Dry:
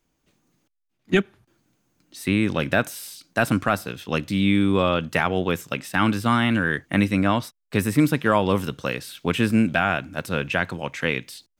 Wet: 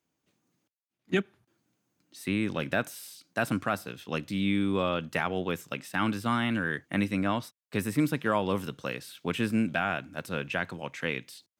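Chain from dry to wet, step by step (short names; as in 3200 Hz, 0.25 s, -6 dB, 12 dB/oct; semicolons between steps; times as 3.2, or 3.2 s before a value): HPF 100 Hz; gain -7.5 dB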